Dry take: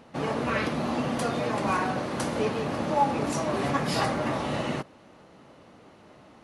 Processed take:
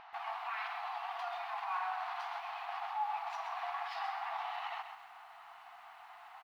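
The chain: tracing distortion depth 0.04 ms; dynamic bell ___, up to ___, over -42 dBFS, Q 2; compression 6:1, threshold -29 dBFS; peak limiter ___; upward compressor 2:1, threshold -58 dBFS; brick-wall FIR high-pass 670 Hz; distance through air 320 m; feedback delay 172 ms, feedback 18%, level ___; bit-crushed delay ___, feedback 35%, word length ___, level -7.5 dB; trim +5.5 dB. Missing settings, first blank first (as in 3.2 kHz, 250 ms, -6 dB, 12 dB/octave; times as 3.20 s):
1.6 kHz, -4 dB, -30.5 dBFS, -18 dB, 131 ms, 12-bit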